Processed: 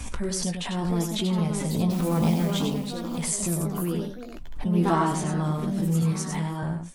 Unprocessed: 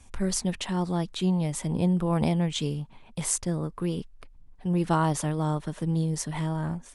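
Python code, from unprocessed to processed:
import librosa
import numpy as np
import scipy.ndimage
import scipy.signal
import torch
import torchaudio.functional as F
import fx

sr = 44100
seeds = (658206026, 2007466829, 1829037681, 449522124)

y = fx.spec_quant(x, sr, step_db=15)
y = fx.mod_noise(y, sr, seeds[0], snr_db=21, at=(1.9, 2.53))
y = fx.highpass(y, sr, hz=130.0, slope=24, at=(6.02, 6.63))
y = fx.doubler(y, sr, ms=18.0, db=-7.5)
y = y + 10.0 ** (-6.0 / 20.0) * np.pad(y, (int(97 * sr / 1000.0), 0))[:len(y)]
y = fx.echo_pitch(y, sr, ms=733, semitones=3, count=2, db_per_echo=-6.0)
y = fx.lowpass(y, sr, hz=9800.0, slope=24, at=(4.94, 5.42))
y = fx.pre_swell(y, sr, db_per_s=44.0)
y = y * librosa.db_to_amplitude(-1.5)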